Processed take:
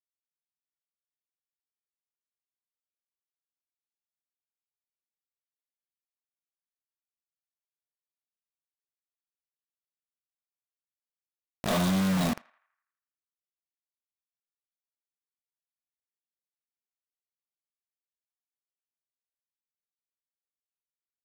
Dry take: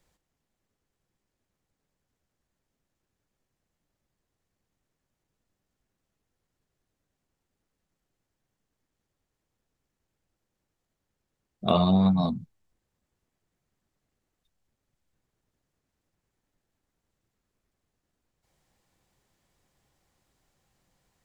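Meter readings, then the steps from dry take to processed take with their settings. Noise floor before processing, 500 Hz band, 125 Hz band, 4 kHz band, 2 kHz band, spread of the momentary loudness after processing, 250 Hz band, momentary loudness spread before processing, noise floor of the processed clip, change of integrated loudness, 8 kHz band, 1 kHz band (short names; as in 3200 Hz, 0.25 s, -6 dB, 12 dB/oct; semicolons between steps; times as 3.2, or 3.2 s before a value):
-84 dBFS, -5.0 dB, -4.0 dB, -1.0 dB, +12.5 dB, 12 LU, -4.0 dB, 13 LU, under -85 dBFS, -4.0 dB, n/a, -4.5 dB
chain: soft clip -24 dBFS, distortion -9 dB; bit-crush 5-bit; narrowing echo 82 ms, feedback 55%, band-pass 1500 Hz, level -21.5 dB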